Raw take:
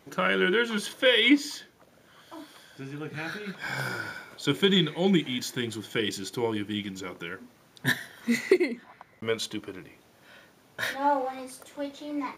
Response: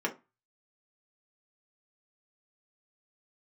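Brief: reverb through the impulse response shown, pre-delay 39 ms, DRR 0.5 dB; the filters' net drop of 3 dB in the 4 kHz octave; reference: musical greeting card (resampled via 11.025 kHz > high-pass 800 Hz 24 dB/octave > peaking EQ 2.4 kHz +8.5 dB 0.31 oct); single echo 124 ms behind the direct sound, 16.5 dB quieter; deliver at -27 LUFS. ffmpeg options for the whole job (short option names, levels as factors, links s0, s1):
-filter_complex "[0:a]equalizer=f=4000:t=o:g=-5.5,aecho=1:1:124:0.15,asplit=2[s0][s1];[1:a]atrim=start_sample=2205,adelay=39[s2];[s1][s2]afir=irnorm=-1:irlink=0,volume=0.422[s3];[s0][s3]amix=inputs=2:normalize=0,aresample=11025,aresample=44100,highpass=f=800:w=0.5412,highpass=f=800:w=1.3066,equalizer=f=2400:t=o:w=0.31:g=8.5,volume=1.06"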